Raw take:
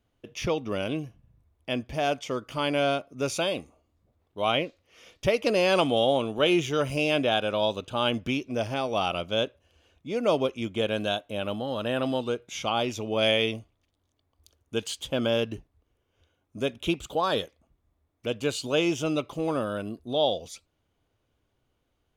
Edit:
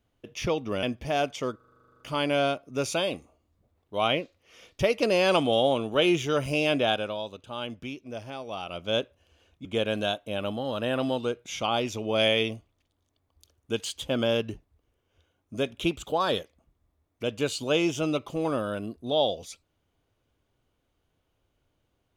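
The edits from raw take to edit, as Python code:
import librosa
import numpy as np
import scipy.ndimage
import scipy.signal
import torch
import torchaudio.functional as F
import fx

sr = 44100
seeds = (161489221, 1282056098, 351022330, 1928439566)

y = fx.edit(x, sr, fx.cut(start_s=0.83, length_s=0.88),
    fx.stutter(start_s=2.44, slice_s=0.04, count=12),
    fx.fade_down_up(start_s=7.34, length_s=2.06, db=-9.0, fade_s=0.29),
    fx.cut(start_s=10.09, length_s=0.59), tone=tone)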